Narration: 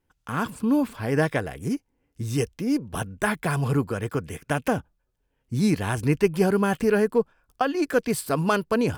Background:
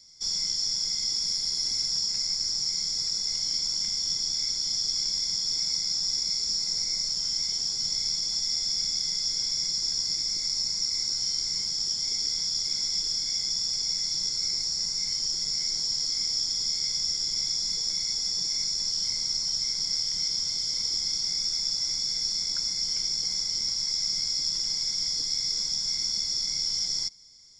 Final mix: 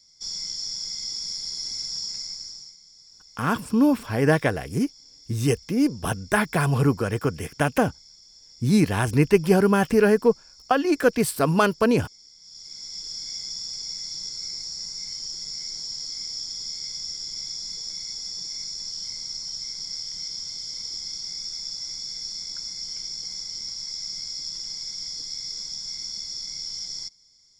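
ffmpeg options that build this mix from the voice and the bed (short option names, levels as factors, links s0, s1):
-filter_complex "[0:a]adelay=3100,volume=1.41[s0];[1:a]volume=5.01,afade=t=out:st=2.09:d=0.68:silence=0.112202,afade=t=in:st=12.4:d=0.84:silence=0.133352[s1];[s0][s1]amix=inputs=2:normalize=0"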